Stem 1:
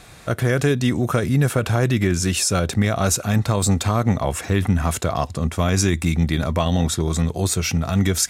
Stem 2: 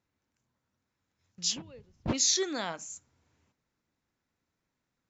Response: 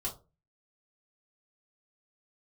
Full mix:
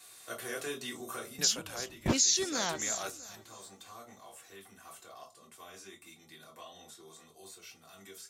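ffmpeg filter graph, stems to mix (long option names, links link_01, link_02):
-filter_complex "[0:a]highpass=370,acrossover=split=3400[link_01][link_02];[link_02]acompressor=threshold=-37dB:ratio=4:attack=1:release=60[link_03];[link_01][link_03]amix=inputs=2:normalize=0,crystalizer=i=6.5:c=0,volume=-10dB,afade=type=out:start_time=0.96:duration=0.59:silence=0.266073,asplit=2[link_04][link_05];[link_05]volume=-10.5dB[link_06];[1:a]aemphasis=mode=production:type=cd,volume=2dB,asplit=3[link_07][link_08][link_09];[link_08]volume=-17dB[link_10];[link_09]apad=whole_len=365929[link_11];[link_04][link_11]sidechaingate=range=-33dB:threshold=-52dB:ratio=16:detection=peak[link_12];[2:a]atrim=start_sample=2205[link_13];[link_06][link_13]afir=irnorm=-1:irlink=0[link_14];[link_10]aecho=0:1:329|658|987|1316|1645|1974:1|0.4|0.16|0.064|0.0256|0.0102[link_15];[link_12][link_07][link_14][link_15]amix=inputs=4:normalize=0,alimiter=limit=-15.5dB:level=0:latency=1:release=465"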